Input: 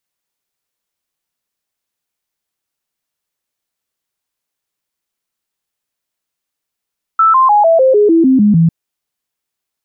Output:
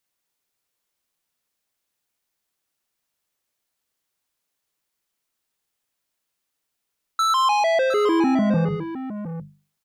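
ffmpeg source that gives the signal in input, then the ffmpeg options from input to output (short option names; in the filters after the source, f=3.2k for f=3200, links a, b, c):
-f lavfi -i "aevalsrc='0.531*clip(min(mod(t,0.15),0.15-mod(t,0.15))/0.005,0,1)*sin(2*PI*1320*pow(2,-floor(t/0.15)/3)*mod(t,0.15))':d=1.5:s=44100"
-af "bandreject=f=50:t=h:w=6,bandreject=f=100:t=h:w=6,bandreject=f=150:t=h:w=6,bandreject=f=200:t=h:w=6,asoftclip=type=tanh:threshold=-18.5dB,aecho=1:1:45|106|149|711:0.106|0.178|0.119|0.282"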